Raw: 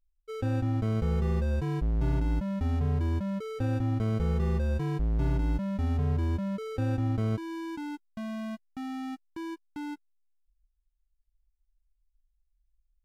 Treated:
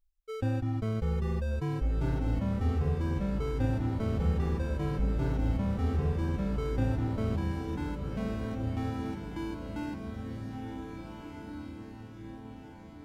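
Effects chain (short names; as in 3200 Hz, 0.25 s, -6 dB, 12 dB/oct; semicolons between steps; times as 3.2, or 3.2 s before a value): reverb removal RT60 1 s; diffused feedback echo 1.657 s, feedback 50%, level -4 dB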